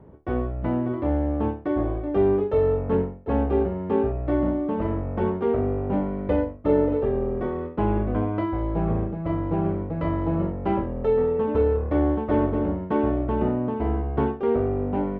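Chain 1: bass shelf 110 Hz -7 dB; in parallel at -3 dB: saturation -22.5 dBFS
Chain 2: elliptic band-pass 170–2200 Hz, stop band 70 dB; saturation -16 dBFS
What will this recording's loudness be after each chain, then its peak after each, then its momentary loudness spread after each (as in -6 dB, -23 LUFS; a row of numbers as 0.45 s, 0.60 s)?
-22.5 LUFS, -27.0 LUFS; -8.0 dBFS, -16.0 dBFS; 5 LU, 5 LU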